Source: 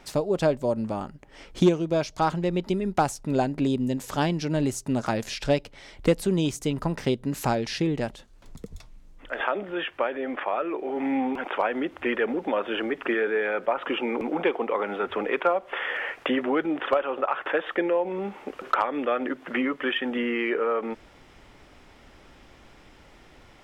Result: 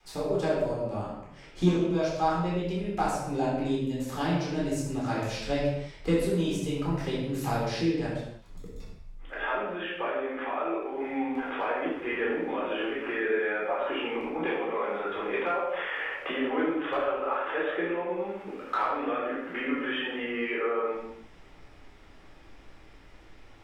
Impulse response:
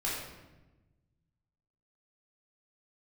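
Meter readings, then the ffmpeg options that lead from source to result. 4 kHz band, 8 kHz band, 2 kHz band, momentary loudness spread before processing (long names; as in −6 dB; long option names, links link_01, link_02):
−4.0 dB, −5.5 dB, −2.5 dB, 6 LU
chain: -filter_complex "[0:a]adynamicequalizer=threshold=0.02:dfrequency=270:dqfactor=0.85:tfrequency=270:tqfactor=0.85:attack=5:release=100:ratio=0.375:range=2:mode=cutabove:tftype=bell[link_01];[1:a]atrim=start_sample=2205,afade=type=out:start_time=0.39:duration=0.01,atrim=end_sample=17640[link_02];[link_01][link_02]afir=irnorm=-1:irlink=0,volume=-8.5dB"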